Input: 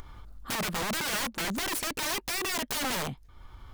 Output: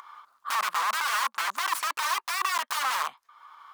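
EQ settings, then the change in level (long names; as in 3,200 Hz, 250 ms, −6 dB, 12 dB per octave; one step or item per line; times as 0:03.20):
high-pass with resonance 1,100 Hz, resonance Q 4.6
high-shelf EQ 8,800 Hz −3.5 dB
0.0 dB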